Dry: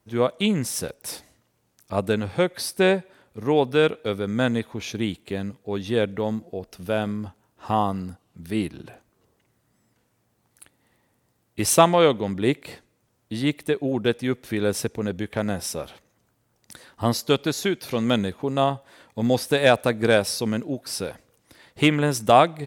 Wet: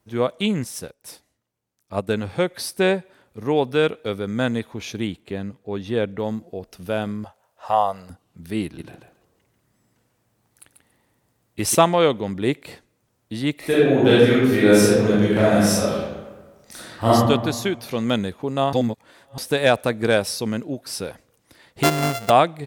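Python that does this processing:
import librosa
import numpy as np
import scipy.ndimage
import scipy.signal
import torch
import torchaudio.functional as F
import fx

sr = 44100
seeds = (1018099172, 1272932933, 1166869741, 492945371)

y = fx.upward_expand(x, sr, threshold_db=-45.0, expansion=1.5, at=(0.64, 2.09))
y = fx.high_shelf(y, sr, hz=4100.0, db=-7.5, at=(5.07, 6.19))
y = fx.low_shelf_res(y, sr, hz=430.0, db=-10.5, q=3.0, at=(7.24, 8.1))
y = fx.echo_feedback(y, sr, ms=140, feedback_pct=17, wet_db=-6, at=(8.64, 11.75))
y = fx.reverb_throw(y, sr, start_s=13.56, length_s=3.53, rt60_s=1.3, drr_db=-9.5)
y = fx.sample_sort(y, sr, block=64, at=(21.83, 22.3))
y = fx.edit(y, sr, fx.reverse_span(start_s=18.73, length_s=0.65), tone=tone)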